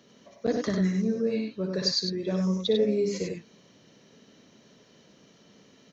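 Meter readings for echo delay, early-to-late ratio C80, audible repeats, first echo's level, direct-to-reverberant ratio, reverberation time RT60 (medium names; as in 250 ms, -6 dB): 59 ms, no reverb, 2, -8.0 dB, no reverb, no reverb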